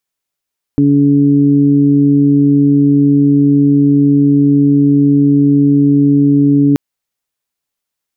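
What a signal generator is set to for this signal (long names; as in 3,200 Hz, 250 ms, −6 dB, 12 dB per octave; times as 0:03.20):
steady harmonic partials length 5.98 s, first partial 142 Hz, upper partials 6/−10 dB, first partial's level −13 dB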